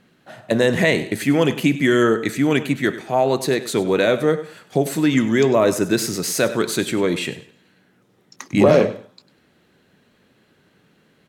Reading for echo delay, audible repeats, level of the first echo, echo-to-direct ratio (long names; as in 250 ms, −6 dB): 99 ms, 2, −15.5 dB, −15.5 dB